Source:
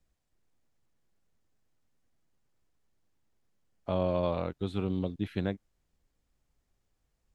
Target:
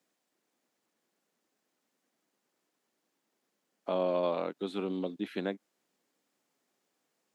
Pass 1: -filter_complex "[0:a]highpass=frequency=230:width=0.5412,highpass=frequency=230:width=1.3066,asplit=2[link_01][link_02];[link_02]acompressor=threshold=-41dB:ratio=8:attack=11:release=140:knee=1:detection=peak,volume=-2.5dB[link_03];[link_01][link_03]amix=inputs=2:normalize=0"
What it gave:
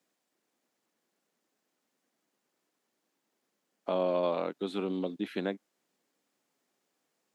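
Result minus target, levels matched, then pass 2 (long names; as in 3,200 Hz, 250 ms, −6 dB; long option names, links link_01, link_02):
downward compressor: peak gain reduction −8.5 dB
-filter_complex "[0:a]highpass=frequency=230:width=0.5412,highpass=frequency=230:width=1.3066,asplit=2[link_01][link_02];[link_02]acompressor=threshold=-50.5dB:ratio=8:attack=11:release=140:knee=1:detection=peak,volume=-2.5dB[link_03];[link_01][link_03]amix=inputs=2:normalize=0"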